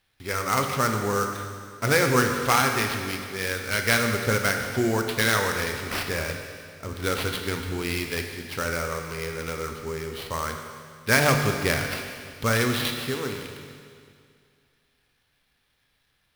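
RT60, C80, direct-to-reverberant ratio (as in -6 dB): 2.2 s, 6.0 dB, 3.5 dB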